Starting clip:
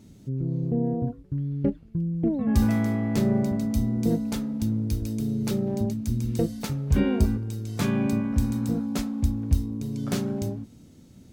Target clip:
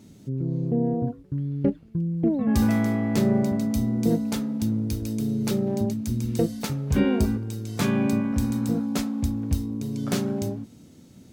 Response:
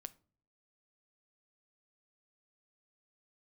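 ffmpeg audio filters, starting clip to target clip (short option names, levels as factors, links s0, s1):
-af "highpass=f=130:p=1,volume=1.41"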